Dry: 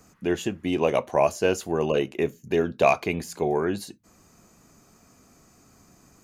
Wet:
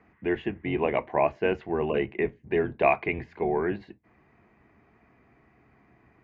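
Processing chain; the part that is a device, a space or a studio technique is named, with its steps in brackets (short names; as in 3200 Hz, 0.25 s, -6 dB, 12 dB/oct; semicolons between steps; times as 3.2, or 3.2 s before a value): sub-octave bass pedal (octaver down 1 oct, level -4 dB; speaker cabinet 63–2400 Hz, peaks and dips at 100 Hz -10 dB, 170 Hz -9 dB, 260 Hz -5 dB, 540 Hz -7 dB, 1300 Hz -7 dB, 2000 Hz +7 dB)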